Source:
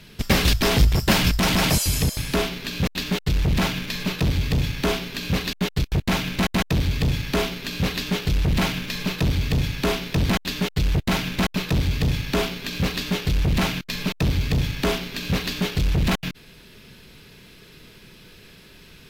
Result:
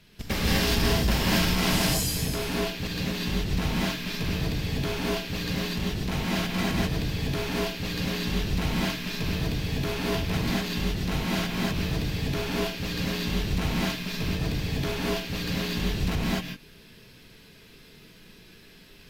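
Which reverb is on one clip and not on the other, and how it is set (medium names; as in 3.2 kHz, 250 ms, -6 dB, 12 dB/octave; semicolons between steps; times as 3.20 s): gated-style reverb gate 270 ms rising, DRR -6 dB; trim -11 dB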